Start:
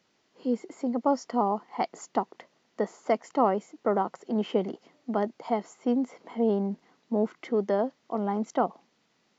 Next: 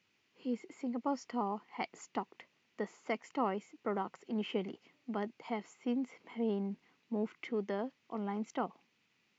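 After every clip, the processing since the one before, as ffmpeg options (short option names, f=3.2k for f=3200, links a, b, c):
-af "equalizer=f=100:t=o:w=0.67:g=8,equalizer=f=630:t=o:w=0.67:g=-6,equalizer=f=2.5k:t=o:w=0.67:g=11,volume=-8.5dB"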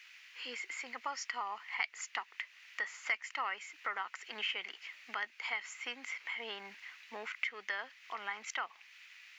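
-af "highpass=f=1.8k:t=q:w=2.1,acompressor=threshold=-58dB:ratio=2,volume=16dB"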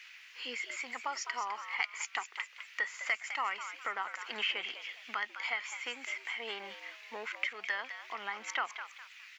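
-filter_complex "[0:a]aphaser=in_gain=1:out_gain=1:delay=2.6:decay=0.24:speed=0.23:type=sinusoidal,asplit=2[a][b];[b]asplit=4[c][d][e][f];[c]adelay=206,afreqshift=120,volume=-10dB[g];[d]adelay=412,afreqshift=240,volume=-19.1dB[h];[e]adelay=618,afreqshift=360,volume=-28.2dB[i];[f]adelay=824,afreqshift=480,volume=-37.4dB[j];[g][h][i][j]amix=inputs=4:normalize=0[k];[a][k]amix=inputs=2:normalize=0,volume=2dB"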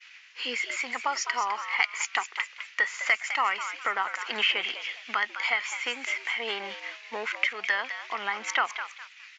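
-af "agate=range=-33dB:threshold=-47dB:ratio=3:detection=peak,volume=8.5dB" -ar 16000 -c:a libvorbis -b:a 96k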